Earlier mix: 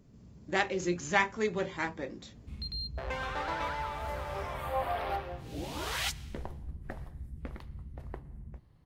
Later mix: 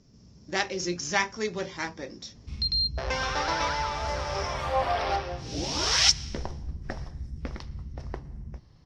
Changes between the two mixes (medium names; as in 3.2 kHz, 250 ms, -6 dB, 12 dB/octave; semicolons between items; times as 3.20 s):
background +6.0 dB; master: add resonant low-pass 5.5 kHz, resonance Q 8.9